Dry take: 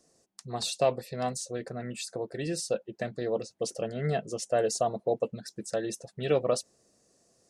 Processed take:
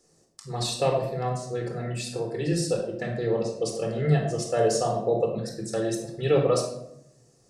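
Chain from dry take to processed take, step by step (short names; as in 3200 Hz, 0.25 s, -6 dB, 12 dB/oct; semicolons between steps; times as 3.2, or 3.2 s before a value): 1.01–1.48 high shelf 3000 Hz -11.5 dB; shoebox room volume 1900 m³, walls furnished, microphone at 4.1 m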